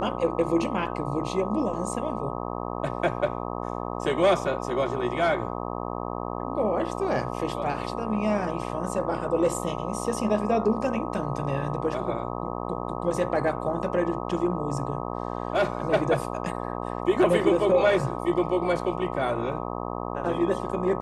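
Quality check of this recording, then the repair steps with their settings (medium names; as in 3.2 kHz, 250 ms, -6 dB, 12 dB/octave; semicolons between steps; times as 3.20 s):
buzz 60 Hz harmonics 21 -32 dBFS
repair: de-hum 60 Hz, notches 21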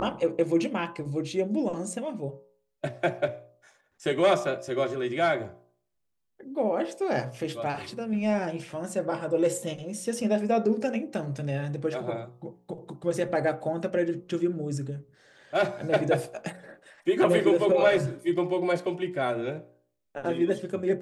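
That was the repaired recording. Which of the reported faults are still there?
nothing left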